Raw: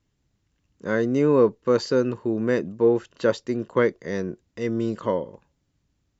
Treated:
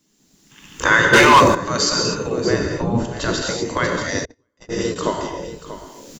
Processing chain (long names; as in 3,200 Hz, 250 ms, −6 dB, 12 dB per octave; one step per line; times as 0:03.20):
camcorder AGC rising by 25 dB per second
bass and treble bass +12 dB, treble +14 dB
single-tap delay 636 ms −12.5 dB
reverb whose tail is shaped and stops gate 270 ms flat, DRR 1 dB
0:04.25–0:04.96: noise gate −11 dBFS, range −43 dB
gate on every frequency bin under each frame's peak −10 dB weak
0:02.50–0:03.42: spectral tilt −2 dB per octave
0:00.50–0:01.40: gain on a spectral selection 800–3,700 Hz +11 dB
0:01.13–0:01.55: leveller curve on the samples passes 3
level +4.5 dB